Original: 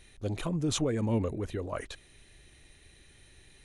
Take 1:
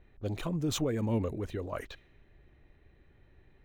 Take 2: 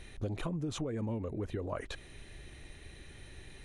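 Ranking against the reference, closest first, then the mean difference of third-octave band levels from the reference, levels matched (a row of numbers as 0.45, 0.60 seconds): 1, 2; 3.5, 6.5 decibels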